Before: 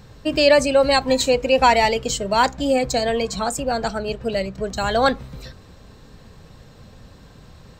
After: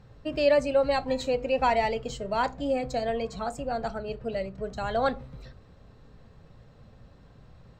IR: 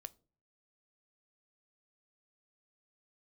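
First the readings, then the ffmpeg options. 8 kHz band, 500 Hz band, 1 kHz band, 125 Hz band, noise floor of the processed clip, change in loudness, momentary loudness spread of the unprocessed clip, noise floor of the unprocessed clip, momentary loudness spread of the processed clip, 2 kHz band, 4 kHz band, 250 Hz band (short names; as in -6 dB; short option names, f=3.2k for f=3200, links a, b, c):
-19.0 dB, -7.5 dB, -9.0 dB, -7.5 dB, -54 dBFS, -8.5 dB, 10 LU, -47 dBFS, 11 LU, -11.0 dB, -15.0 dB, -9.0 dB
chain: -filter_complex "[0:a]lowpass=f=2k:p=1[a];[1:a]atrim=start_sample=2205,asetrate=48510,aresample=44100[b];[a][b]afir=irnorm=-1:irlink=0,volume=-1.5dB"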